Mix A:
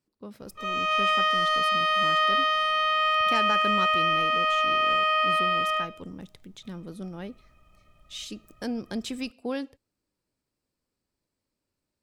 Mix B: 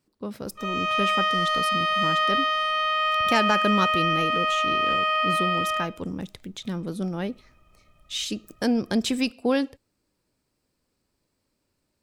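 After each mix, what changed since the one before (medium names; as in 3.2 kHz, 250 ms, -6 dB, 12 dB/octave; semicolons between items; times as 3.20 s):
speech +8.5 dB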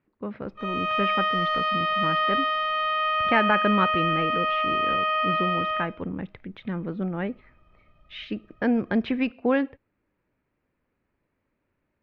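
speech: add resonant low-pass 2.1 kHz, resonance Q 1.8; master: add Gaussian low-pass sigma 2.2 samples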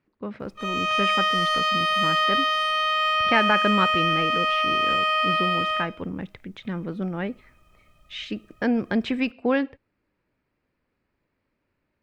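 background: add treble shelf 3.7 kHz +6.5 dB; master: remove Gaussian low-pass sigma 2.2 samples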